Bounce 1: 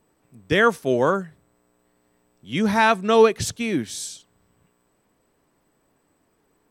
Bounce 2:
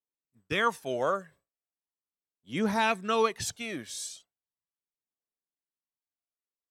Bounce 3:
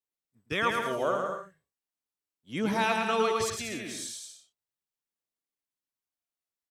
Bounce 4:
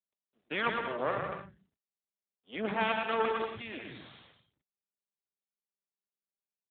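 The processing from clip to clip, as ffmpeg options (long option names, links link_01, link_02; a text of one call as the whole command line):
ffmpeg -i in.wav -af "agate=range=-33dB:threshold=-40dB:ratio=3:detection=peak,lowshelf=frequency=280:gain=-10,aphaser=in_gain=1:out_gain=1:delay=1.9:decay=0.47:speed=0.38:type=triangular,volume=-7dB" out.wav
ffmpeg -i in.wav -af "aecho=1:1:110|187|240.9|278.6|305:0.631|0.398|0.251|0.158|0.1,volume=-1.5dB" out.wav
ffmpeg -i in.wav -filter_complex "[0:a]aeval=exprs='max(val(0),0)':channel_layout=same,acrossover=split=200[link_01][link_02];[link_01]adelay=150[link_03];[link_03][link_02]amix=inputs=2:normalize=0,volume=1dB" -ar 8000 -c:a libopencore_amrnb -b:a 12200 out.amr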